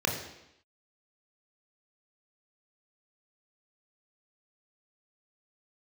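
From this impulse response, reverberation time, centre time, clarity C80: 0.85 s, 34 ms, 8.0 dB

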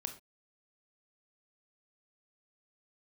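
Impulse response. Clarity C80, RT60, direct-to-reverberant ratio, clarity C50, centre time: 16.0 dB, not exponential, 6.0 dB, 11.0 dB, 11 ms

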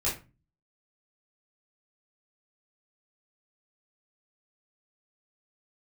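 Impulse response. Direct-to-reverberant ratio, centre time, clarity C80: -8.0 dB, 30 ms, 14.5 dB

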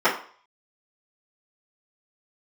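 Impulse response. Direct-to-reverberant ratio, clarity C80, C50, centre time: -12.0 dB, 12.5 dB, 8.5 dB, 25 ms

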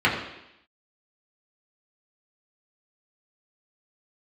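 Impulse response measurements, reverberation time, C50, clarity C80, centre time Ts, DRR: 0.85 s, 5.5 dB, 7.5 dB, 37 ms, -6.0 dB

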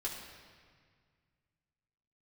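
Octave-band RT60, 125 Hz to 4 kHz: 2.8, 2.3, 1.9, 1.8, 1.8, 1.5 s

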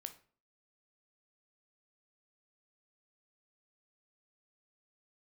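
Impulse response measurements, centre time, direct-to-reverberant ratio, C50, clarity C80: 7 ms, 8.0 dB, 13.5 dB, 18.5 dB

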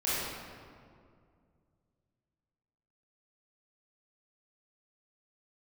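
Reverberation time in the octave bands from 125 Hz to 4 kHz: 3.2, 2.7, 2.4, 2.1, 1.6, 1.2 s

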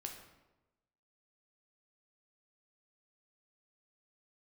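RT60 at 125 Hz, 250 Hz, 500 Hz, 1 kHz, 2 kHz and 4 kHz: 1.1, 1.1, 1.1, 1.0, 0.80, 0.70 s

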